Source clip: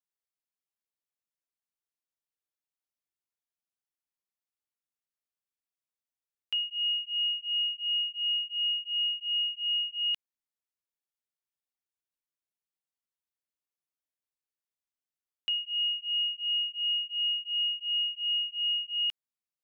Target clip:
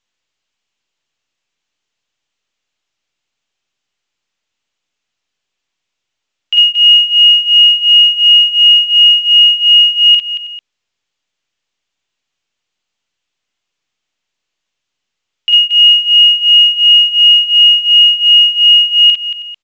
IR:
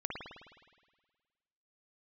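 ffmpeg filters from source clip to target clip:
-af "equalizer=f=2.9k:w=1.3:g=10,aecho=1:1:46|54|227|320|444:0.668|0.631|0.447|0.119|0.178,volume=6.5dB" -ar 16000 -c:a pcm_mulaw

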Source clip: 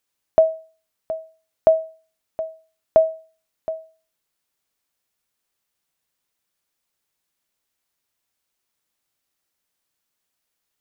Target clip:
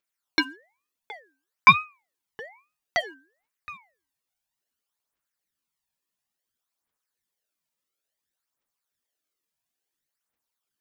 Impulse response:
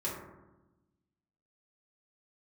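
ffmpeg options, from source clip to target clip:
-filter_complex "[0:a]aeval=exprs='0.596*(cos(1*acos(clip(val(0)/0.596,-1,1)))-cos(1*PI/2))+0.188*(cos(7*acos(clip(val(0)/0.596,-1,1)))-cos(7*PI/2))':c=same,asplit=2[a][b];[b]aeval=exprs='sgn(val(0))*max(abs(val(0))-0.0237,0)':c=same,volume=-3.5dB[c];[a][c]amix=inputs=2:normalize=0,aphaser=in_gain=1:out_gain=1:delay=1.4:decay=0.72:speed=0.58:type=triangular,aeval=exprs='val(0)*sin(2*PI*1400*n/s+1400*0.35/1.1*sin(2*PI*1.1*n/s))':c=same,volume=-9dB"

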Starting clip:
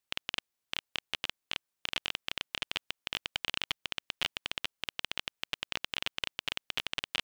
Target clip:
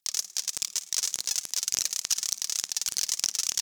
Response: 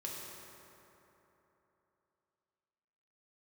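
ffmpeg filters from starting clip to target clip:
-filter_complex "[0:a]aphaser=in_gain=1:out_gain=1:delay=4.7:decay=0.72:speed=1.7:type=sinusoidal,tiltshelf=f=1.3k:g=-8,asplit=5[a][b][c][d][e];[b]adelay=108,afreqshift=88,volume=-14.5dB[f];[c]adelay=216,afreqshift=176,volume=-21.2dB[g];[d]adelay=324,afreqshift=264,volume=-28dB[h];[e]adelay=432,afreqshift=352,volume=-34.7dB[i];[a][f][g][h][i]amix=inputs=5:normalize=0,asplit=2[j][k];[1:a]atrim=start_sample=2205[l];[k][l]afir=irnorm=-1:irlink=0,volume=-20dB[m];[j][m]amix=inputs=2:normalize=0,asetrate=88200,aresample=44100"

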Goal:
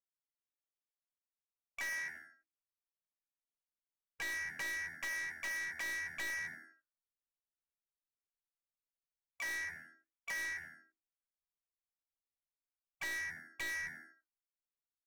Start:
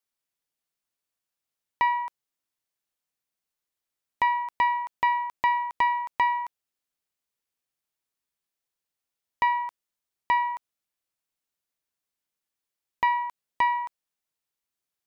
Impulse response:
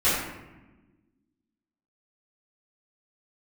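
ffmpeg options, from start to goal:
-filter_complex "[0:a]lowpass=f=2.5k:t=q:w=0.5098,lowpass=f=2.5k:t=q:w=0.6013,lowpass=f=2.5k:t=q:w=0.9,lowpass=f=2.5k:t=q:w=2.563,afreqshift=-2900,acrossover=split=2200[a][b];[a]flanger=delay=4.8:depth=5.1:regen=-88:speed=1.3:shape=sinusoidal[c];[b]acrusher=bits=5:mix=0:aa=0.5[d];[c][d]amix=inputs=2:normalize=0,asubboost=boost=10:cutoff=71,afftdn=nr=13:nf=-41,equalizer=f=1.4k:w=0.61:g=-3,asplit=2[e][f];[f]adelay=17,volume=-6.5dB[g];[e][g]amix=inputs=2:normalize=0,asplit=2[h][i];[i]asplit=4[j][k][l][m];[j]adelay=83,afreqshift=-81,volume=-20.5dB[n];[k]adelay=166,afreqshift=-162,volume=-26.5dB[o];[l]adelay=249,afreqshift=-243,volume=-32.5dB[p];[m]adelay=332,afreqshift=-324,volume=-38.6dB[q];[n][o][p][q]amix=inputs=4:normalize=0[r];[h][r]amix=inputs=2:normalize=0,acompressor=threshold=-32dB:ratio=6,asplit=3[s][t][u];[t]asetrate=37084,aresample=44100,atempo=1.18921,volume=-9dB[v];[u]asetrate=52444,aresample=44100,atempo=0.840896,volume=-8dB[w];[s][v][w]amix=inputs=3:normalize=0,aeval=exprs='(tanh(100*val(0)+0.05)-tanh(0.05))/100':c=same,volume=2.5dB"

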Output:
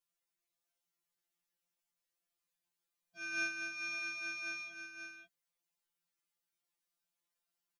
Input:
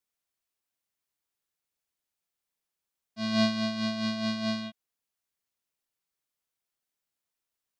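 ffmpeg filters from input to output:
-af "aecho=1:1:538:0.473,afftfilt=real='re*2.83*eq(mod(b,8),0)':imag='im*2.83*eq(mod(b,8),0)':win_size=2048:overlap=0.75,volume=-1dB"

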